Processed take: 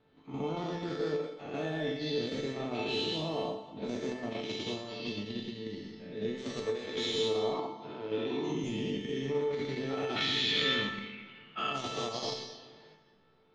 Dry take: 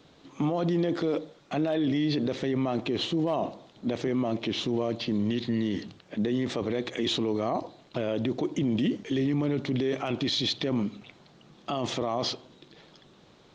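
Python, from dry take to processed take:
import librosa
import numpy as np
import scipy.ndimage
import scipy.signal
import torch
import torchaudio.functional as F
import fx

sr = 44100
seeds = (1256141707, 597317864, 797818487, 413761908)

p1 = fx.spec_dilate(x, sr, span_ms=240)
p2 = fx.band_shelf(p1, sr, hz=2000.0, db=12.5, octaves=1.7, at=(10.16, 11.72))
p3 = fx.rev_plate(p2, sr, seeds[0], rt60_s=1.5, hf_ratio=0.9, predelay_ms=0, drr_db=3.0)
p4 = fx.vibrato(p3, sr, rate_hz=8.7, depth_cents=13.0)
p5 = fx.cabinet(p4, sr, low_hz=130.0, low_slope=12, high_hz=5700.0, hz=(310.0, 590.0, 1000.0), db=(6, -7, 6), at=(7.54, 8.64))
p6 = fx.level_steps(p5, sr, step_db=22)
p7 = p5 + F.gain(torch.from_numpy(p6), -0.5).numpy()
p8 = fx.env_lowpass(p7, sr, base_hz=2500.0, full_db=-11.5)
p9 = fx.comb_fb(p8, sr, f0_hz=440.0, decay_s=0.53, harmonics='all', damping=0.0, mix_pct=90)
p10 = fx.end_taper(p9, sr, db_per_s=110.0)
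y = F.gain(torch.from_numpy(p10), -1.5).numpy()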